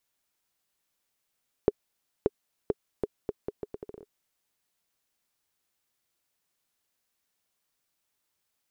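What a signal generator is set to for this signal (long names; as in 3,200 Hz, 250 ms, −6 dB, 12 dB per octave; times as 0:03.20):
bouncing ball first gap 0.58 s, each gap 0.76, 415 Hz, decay 34 ms −8.5 dBFS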